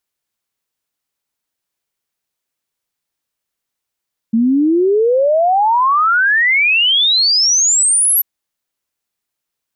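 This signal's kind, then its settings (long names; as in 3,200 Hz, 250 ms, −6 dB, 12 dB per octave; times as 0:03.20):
exponential sine sweep 220 Hz → 12,000 Hz 3.89 s −9.5 dBFS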